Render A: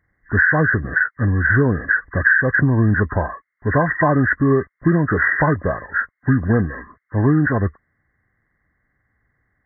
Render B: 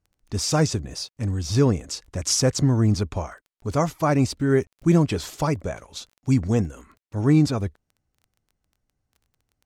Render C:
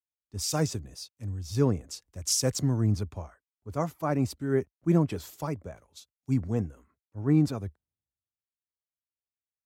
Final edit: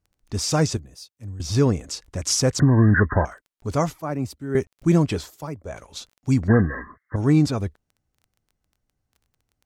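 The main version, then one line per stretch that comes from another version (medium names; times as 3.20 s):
B
0.77–1.40 s: from C
2.60–3.25 s: from A
4.00–4.55 s: from C
5.26–5.69 s: from C, crossfade 0.16 s
6.48–7.16 s: from A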